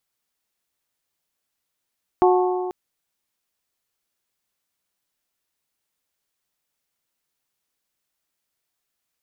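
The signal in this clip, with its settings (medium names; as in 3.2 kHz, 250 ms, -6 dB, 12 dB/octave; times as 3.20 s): metal hit bell, length 0.49 s, lowest mode 365 Hz, modes 4, decay 2.09 s, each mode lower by 3.5 dB, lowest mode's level -13 dB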